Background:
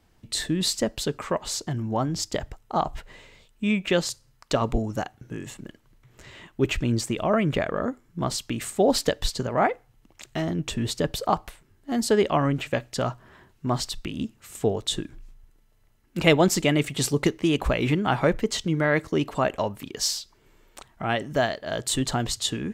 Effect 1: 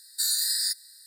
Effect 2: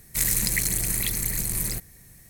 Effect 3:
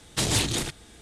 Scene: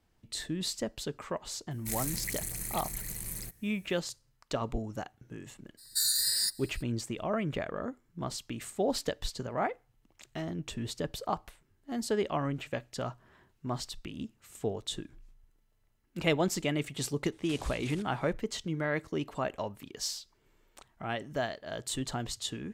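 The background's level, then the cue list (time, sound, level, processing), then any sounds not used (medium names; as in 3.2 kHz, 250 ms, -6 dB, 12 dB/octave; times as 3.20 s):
background -9.5 dB
1.71 s: add 2 -12 dB
5.77 s: add 1 -2.5 dB, fades 0.02 s
17.32 s: add 3 -14.5 dB + compression, threshold -29 dBFS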